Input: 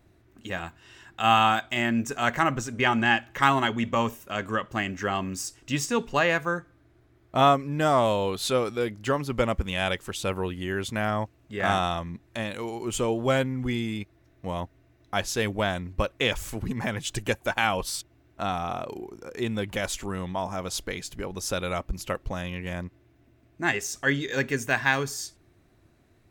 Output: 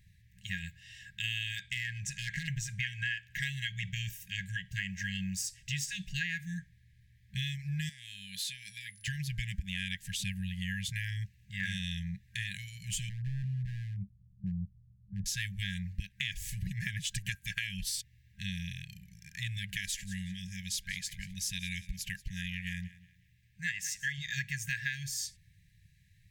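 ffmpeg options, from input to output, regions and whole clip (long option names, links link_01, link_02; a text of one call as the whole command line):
ffmpeg -i in.wav -filter_complex "[0:a]asettb=1/sr,asplit=3[link_01][link_02][link_03];[link_01]atrim=end=1.584[link_04];[link_02]atrim=start=1.58:end=2.48,asetpts=PTS-STARTPTS,afade=type=in:duration=0.004:curve=qsin,afade=type=out:start_time=0.896:duration=0.004:curve=qsin,lowpass=10000,acompressor=threshold=-25dB:ratio=3:attack=3.2:release=140:knee=1:detection=peak,asoftclip=type=hard:threshold=-23.5dB[link_05];[link_03]atrim=start=2.476[link_06];[link_04][link_05]acrossfade=duration=0.004:curve1=hsin:curve2=qsin[link_07];[link_07][link_06]acrossfade=duration=0.004:curve1=qsin:curve2=hsin,asettb=1/sr,asplit=3[link_08][link_09][link_10];[link_08]atrim=end=7.894[link_11];[link_09]atrim=start=7.89:end=9.08,asetpts=PTS-STARTPTS,afade=type=in:duration=0.004:curve=qsin,afade=type=out:start_time=1.186:duration=0.004:curve=qsin,highpass=frequency=560:poles=1,aeval=exprs='val(0)+0.00126*sin(2*PI*10000*n/s)':channel_layout=same,acompressor=threshold=-31dB:ratio=8:attack=3.2:release=140:knee=1:detection=peak[link_12];[link_10]atrim=start=9.076[link_13];[link_11][link_12]acrossfade=duration=0.004:curve1=hsin:curve2=qsin[link_14];[link_14][link_13]acrossfade=duration=0.004:curve1=qsin:curve2=hsin,asettb=1/sr,asplit=3[link_15][link_16][link_17];[link_15]atrim=end=13.094[link_18];[link_16]atrim=start=13.09:end=15.26,asetpts=PTS-STARTPTS,afade=type=in:duration=0.004:curve=qsin,afade=type=out:start_time=2.166:duration=0.004:curve=qsin,lowpass=frequency=220:width_type=q:width=1.9,aeval=exprs='0.0708*(abs(mod(val(0)/0.0708+3,4)-2)-1)':channel_layout=same[link_19];[link_17]atrim=start=15.256[link_20];[link_18][link_19]acrossfade=duration=0.004:curve1=hsin:curve2=qsin[link_21];[link_21][link_20]acrossfade=duration=0.004:curve1=qsin:curve2=hsin,asettb=1/sr,asplit=3[link_22][link_23][link_24];[link_22]atrim=end=19.584[link_25];[link_23]atrim=start=19.58:end=24.18,asetpts=PTS-STARTPTS,afade=type=in:duration=0.004:curve=qsin,afade=type=out:start_time=4.596:duration=0.004:curve=qsin,lowshelf=frequency=450:gain=-5,aecho=1:1:182|364|546:0.112|0.0348|0.0108,atrim=end_sample=202860[link_26];[link_24]atrim=start=24.176[link_27];[link_25][link_26]acrossfade=duration=0.004:curve1=hsin:curve2=qsin[link_28];[link_28][link_27]acrossfade=duration=0.004:curve1=qsin:curve2=hsin,afftfilt=real='re*(1-between(b*sr/4096,200,1600))':imag='im*(1-between(b*sr/4096,200,1600))':win_size=4096:overlap=0.75,acompressor=threshold=-32dB:ratio=6" out.wav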